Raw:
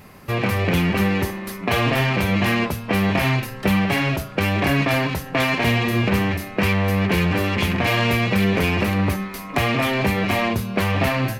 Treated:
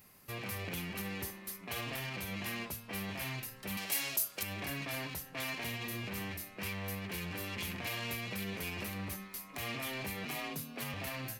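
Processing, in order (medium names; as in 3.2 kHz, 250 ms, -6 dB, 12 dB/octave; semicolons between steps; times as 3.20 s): 3.77–4.43 s: tone controls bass -12 dB, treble +14 dB; 10.25–10.94 s: frequency shift +43 Hz; peak limiter -12 dBFS, peak gain reduction 5.5 dB; pre-emphasis filter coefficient 0.8; trim -7 dB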